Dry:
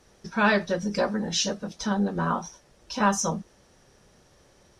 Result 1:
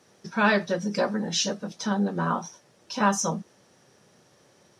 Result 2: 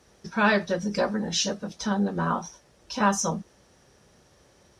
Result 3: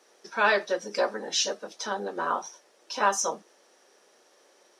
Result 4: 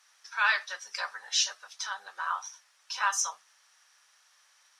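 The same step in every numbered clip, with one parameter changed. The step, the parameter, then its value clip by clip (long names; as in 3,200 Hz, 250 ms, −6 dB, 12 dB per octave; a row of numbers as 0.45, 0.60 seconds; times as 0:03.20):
high-pass filter, corner frequency: 110, 43, 340, 1,100 Hertz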